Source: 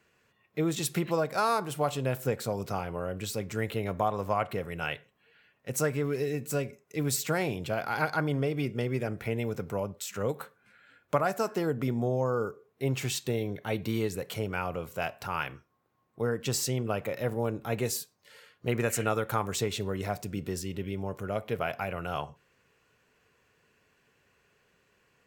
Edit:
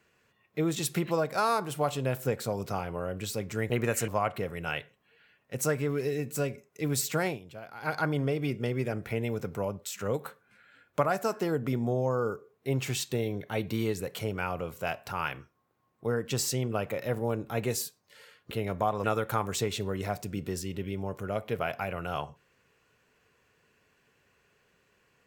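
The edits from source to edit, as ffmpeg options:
-filter_complex "[0:a]asplit=7[a][b][c][d][e][f][g];[a]atrim=end=3.702[h];[b]atrim=start=18.658:end=19.042[i];[c]atrim=start=4.228:end=7.54,asetpts=PTS-STARTPTS,afade=t=out:st=3.192:d=0.12:silence=0.223872[j];[d]atrim=start=7.54:end=7.96,asetpts=PTS-STARTPTS,volume=-13dB[k];[e]atrim=start=7.96:end=18.662,asetpts=PTS-STARTPTS,afade=t=in:d=0.12:silence=0.223872[l];[f]atrim=start=3.698:end=4.232[m];[g]atrim=start=19.038[n];[h][i]acrossfade=d=0.004:c1=hsin:c2=hsin[o];[j][k][l]concat=n=3:v=0:a=1[p];[o][p]acrossfade=d=0.004:c1=hsin:c2=hsin[q];[q][m]acrossfade=d=0.004:c1=hsin:c2=hsin[r];[r][n]acrossfade=d=0.004:c1=hsin:c2=hsin"

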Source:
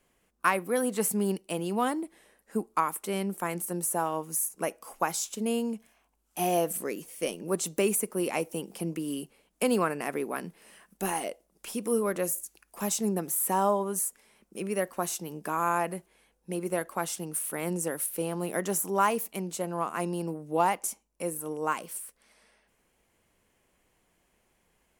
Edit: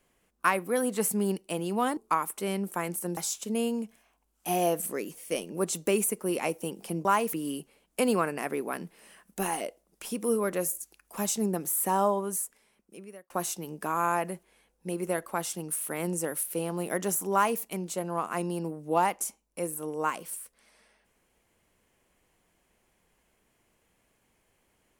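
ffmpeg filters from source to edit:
-filter_complex "[0:a]asplit=6[a][b][c][d][e][f];[a]atrim=end=1.972[g];[b]atrim=start=2.628:end=3.832[h];[c]atrim=start=5.078:end=8.962[i];[d]atrim=start=18.958:end=19.242[j];[e]atrim=start=8.958:end=14.93,asetpts=PTS-STARTPTS,afade=t=out:st=4.832:d=1.14[k];[f]atrim=start=14.93,asetpts=PTS-STARTPTS,afade=t=in:d=0.004:c=hsin[l];[g][h]acrossfade=d=0.004:c1=hsin:c2=hsin[m];[m][i]acrossfade=d=0.004:c1=hsin:c2=hsin[n];[n][j]acrossfade=d=0.004:c1=hsin:c2=hsin[o];[k][l]concat=n=2:v=0:a=1[p];[o][p]acrossfade=d=0.004:c1=hsin:c2=hsin"

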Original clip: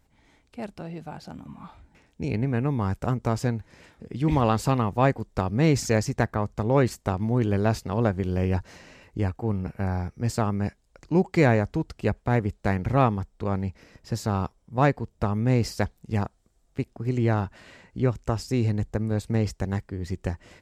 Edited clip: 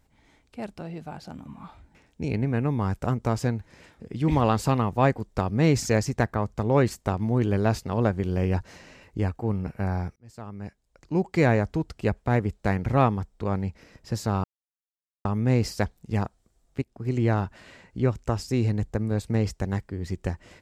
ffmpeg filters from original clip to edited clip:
-filter_complex "[0:a]asplit=5[a][b][c][d][e];[a]atrim=end=10.16,asetpts=PTS-STARTPTS,afade=t=out:st=10.156:d=0.004:c=hsin[f];[b]atrim=start=10.16:end=14.44,asetpts=PTS-STARTPTS,afade=t=in:d=1.48,afade=t=out:st=4.276:d=0.004:c=hsin[g];[c]atrim=start=14.44:end=15.25,asetpts=PTS-STARTPTS,volume=0[h];[d]atrim=start=15.25:end=16.82,asetpts=PTS-STARTPTS,afade=t=in:d=0.004:c=hsin,afade=t=out:st=1.566:d=0.004:c=hsin:silence=0.158489[i];[e]atrim=start=16.82,asetpts=PTS-STARTPTS,afade=t=in:d=0.38:c=qsin:silence=0.158489[j];[f][g][h][i][j]concat=n=5:v=0:a=1"

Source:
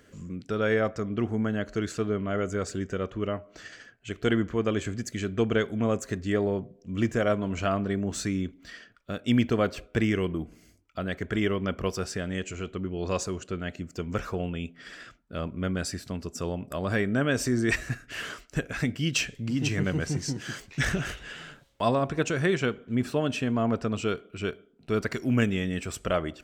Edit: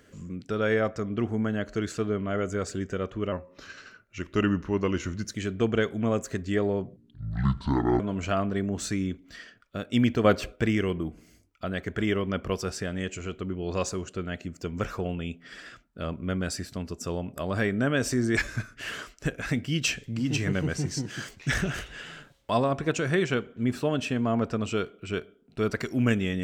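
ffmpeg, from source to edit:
-filter_complex "[0:a]asplit=9[a][b][c][d][e][f][g][h][i];[a]atrim=end=3.324[j];[b]atrim=start=3.32:end=5.12,asetpts=PTS-STARTPTS,asetrate=39249,aresample=44100,atrim=end_sample=89191,asetpts=PTS-STARTPTS[k];[c]atrim=start=5.116:end=6.744[l];[d]atrim=start=6.74:end=7.34,asetpts=PTS-STARTPTS,asetrate=25578,aresample=44100[m];[e]atrim=start=7.336:end=9.592[n];[f]atrim=start=9.588:end=9.902,asetpts=PTS-STARTPTS,volume=5dB[o];[g]atrim=start=9.898:end=17.714[p];[h]atrim=start=17.71:end=18.07,asetpts=PTS-STARTPTS,asetrate=40572,aresample=44100[q];[i]atrim=start=18.066[r];[j][k]acrossfade=d=0.004:c1=hsin:c2=hsin[s];[s][l]acrossfade=d=0.004:c1=hsin:c2=hsin[t];[t][m]acrossfade=d=0.004:c1=hsin:c2=hsin[u];[u][n]acrossfade=d=0.004:c1=hsin:c2=hsin[v];[v][o]acrossfade=d=0.004:c1=hsin:c2=hsin[w];[w][p]acrossfade=d=0.004:c1=hsin:c2=hsin[x];[x][q]acrossfade=d=0.004:c1=hsin:c2=hsin[y];[y][r]acrossfade=d=0.004:c1=hsin:c2=hsin"

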